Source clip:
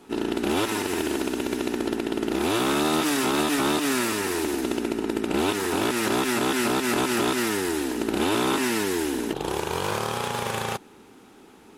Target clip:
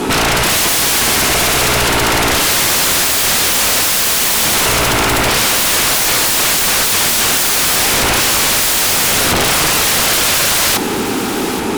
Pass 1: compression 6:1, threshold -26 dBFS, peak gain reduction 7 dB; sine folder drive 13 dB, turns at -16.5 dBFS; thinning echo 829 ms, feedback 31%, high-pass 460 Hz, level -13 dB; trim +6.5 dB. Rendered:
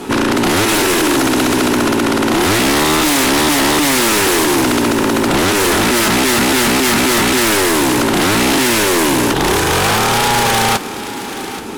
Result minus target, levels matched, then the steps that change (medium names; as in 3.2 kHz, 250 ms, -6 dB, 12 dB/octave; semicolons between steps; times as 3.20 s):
sine folder: distortion -30 dB
change: sine folder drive 23 dB, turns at -16.5 dBFS